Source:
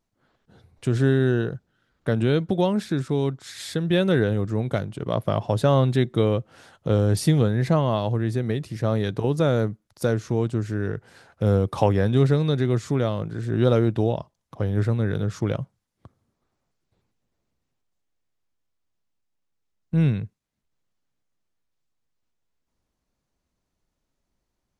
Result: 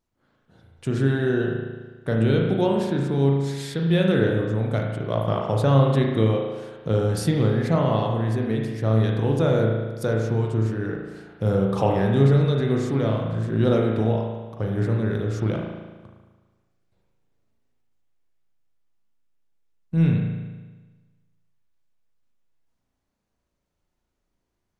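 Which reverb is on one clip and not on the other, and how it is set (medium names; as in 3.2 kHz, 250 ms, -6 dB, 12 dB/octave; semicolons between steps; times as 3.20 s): spring tank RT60 1.3 s, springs 36 ms, chirp 70 ms, DRR -0.5 dB; trim -2.5 dB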